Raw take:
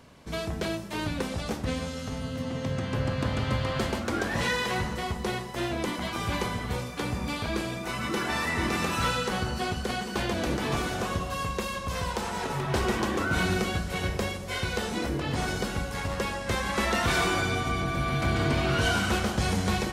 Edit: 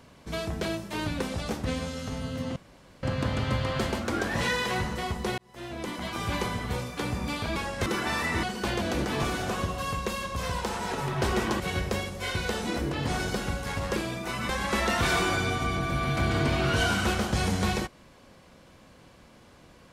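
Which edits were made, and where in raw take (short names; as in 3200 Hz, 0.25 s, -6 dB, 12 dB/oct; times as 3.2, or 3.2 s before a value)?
2.56–3.03 room tone
5.38–6.54 fade in equal-power
7.56–8.09 swap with 16.24–16.54
8.66–9.95 cut
13.12–13.88 cut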